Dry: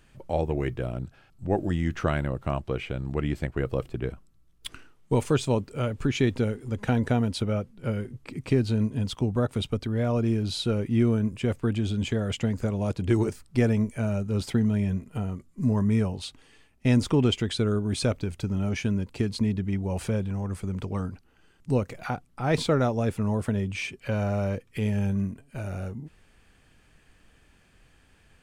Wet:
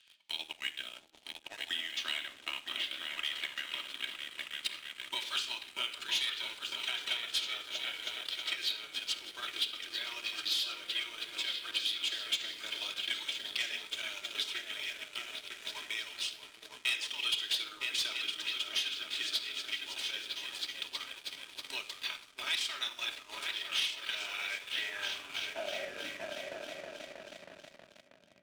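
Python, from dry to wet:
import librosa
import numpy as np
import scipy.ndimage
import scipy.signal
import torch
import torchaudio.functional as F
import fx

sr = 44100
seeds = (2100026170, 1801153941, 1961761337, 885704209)

p1 = fx.tone_stack(x, sr, knobs='5-5-5')
p2 = fx.spec_gate(p1, sr, threshold_db=-10, keep='weak')
p3 = fx.filter_sweep_bandpass(p2, sr, from_hz=3400.0, to_hz=210.0, start_s=24.14, end_s=26.72, q=3.3)
p4 = p3 + fx.echo_opening(p3, sr, ms=319, hz=200, octaves=2, feedback_pct=70, wet_db=0, dry=0)
p5 = fx.room_shoebox(p4, sr, seeds[0], volume_m3=3000.0, walls='furnished', distance_m=2.8)
p6 = fx.leveller(p5, sr, passes=3)
p7 = fx.transient(p6, sr, attack_db=5, sustain_db=-4)
p8 = fx.band_squash(p7, sr, depth_pct=40)
y = p8 * librosa.db_to_amplitude(8.0)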